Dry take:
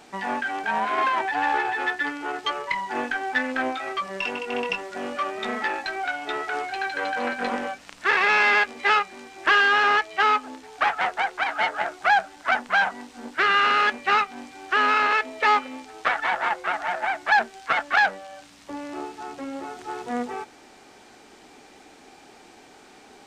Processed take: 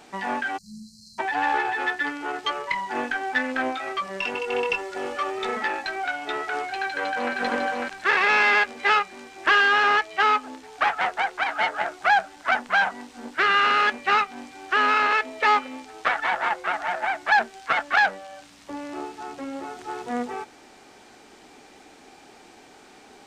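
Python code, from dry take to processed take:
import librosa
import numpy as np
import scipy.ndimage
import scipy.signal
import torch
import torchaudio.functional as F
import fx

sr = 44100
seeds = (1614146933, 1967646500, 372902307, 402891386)

y = fx.spec_erase(x, sr, start_s=0.57, length_s=0.62, low_hz=230.0, high_hz=4000.0)
y = fx.comb(y, sr, ms=2.3, depth=0.65, at=(4.34, 5.57))
y = fx.echo_throw(y, sr, start_s=6.8, length_s=0.53, ms=550, feedback_pct=30, wet_db=-2.5)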